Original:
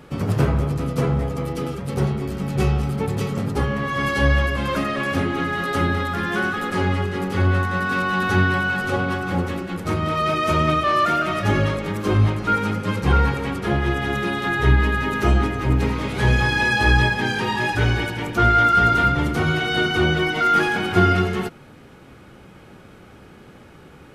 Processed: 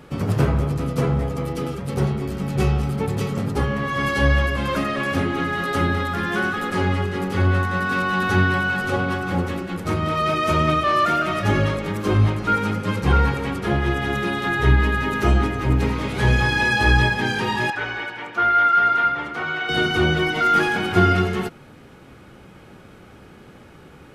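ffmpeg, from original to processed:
-filter_complex "[0:a]asettb=1/sr,asplit=3[a][b][c];[a]atrim=end=17.704[d];[b]atrim=start=17.7:end=19.69,asetpts=PTS-STARTPTS,afade=t=in:d=0.004:c=qsin,afade=t=out:st=1.986:d=0.004:c=qsin,bandpass=f=1.4k:t=q:w=0.83[e];[c]atrim=start=19.686[f];[d][e]acrossfade=d=0.004:c1=hsin:c2=qsin[g];[g][f]acrossfade=d=0.004:c1=qsin:c2=hsin"

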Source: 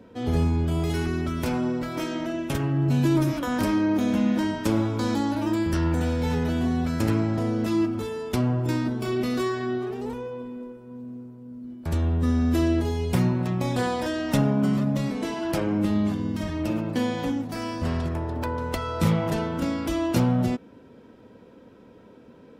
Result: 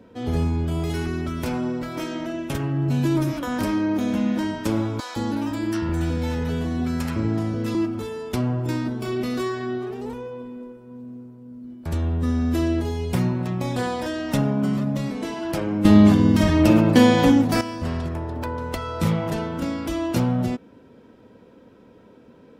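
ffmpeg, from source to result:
-filter_complex "[0:a]asettb=1/sr,asplit=3[a][b][c];[a]atrim=end=5.004[d];[b]atrim=start=5:end=7.75,asetpts=PTS-STARTPTS,afade=t=in:d=0.004:c=qsin,afade=t=out:st=2.746:d=0.004:c=qsin,acrossover=split=650[e][f];[e]adelay=160[g];[g][f]amix=inputs=2:normalize=0,atrim=end_sample=121275[h];[c]atrim=start=7.746[i];[d][h]acrossfade=d=0.004:c1=hsin:c2=qsin[j];[j][i]acrossfade=d=0.004:c1=qsin:c2=hsin,asplit=3[k][l][m];[k]atrim=end=15.852[n];[l]atrim=start=15.848:end=17.612,asetpts=PTS-STARTPTS,volume=11.5dB[o];[m]atrim=start=17.608[p];[n][o]acrossfade=d=0.004:c1=hsin:c2=hsin[q];[q][p]acrossfade=d=0.004:c1=hsin:c2=hsin"

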